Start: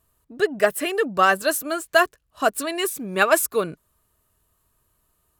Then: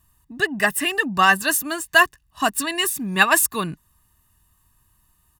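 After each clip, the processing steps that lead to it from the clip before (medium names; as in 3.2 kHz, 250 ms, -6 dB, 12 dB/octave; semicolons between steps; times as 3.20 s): peaking EQ 610 Hz -10.5 dB 0.67 oct; comb 1.1 ms, depth 66%; trim +3.5 dB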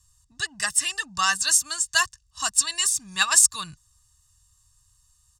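FFT filter 110 Hz 0 dB, 230 Hz -21 dB, 430 Hz -23 dB, 1.2 kHz -5 dB, 2.2 kHz -9 dB, 5.3 kHz +11 dB, 7.8 kHz +11 dB, 14 kHz -17 dB; trim -1 dB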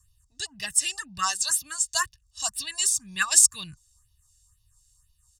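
phase shifter stages 4, 2 Hz, lowest notch 160–1400 Hz; trim -1 dB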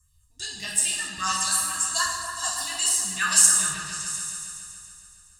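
delay with an opening low-pass 140 ms, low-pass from 750 Hz, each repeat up 1 oct, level -3 dB; gated-style reverb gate 310 ms falling, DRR -3.5 dB; trim -3.5 dB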